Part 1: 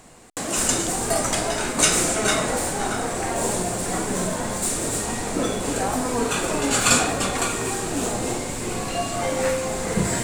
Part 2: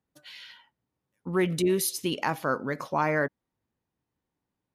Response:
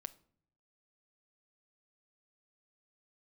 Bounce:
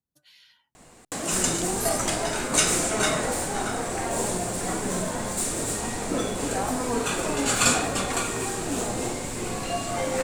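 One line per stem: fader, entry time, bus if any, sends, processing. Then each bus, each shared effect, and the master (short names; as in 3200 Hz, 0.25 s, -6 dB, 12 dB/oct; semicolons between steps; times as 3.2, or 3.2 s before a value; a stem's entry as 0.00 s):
-3.0 dB, 0.75 s, no send, dry
-12.5 dB, 0.00 s, no send, tone controls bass +7 dB, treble +9 dB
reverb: off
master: dry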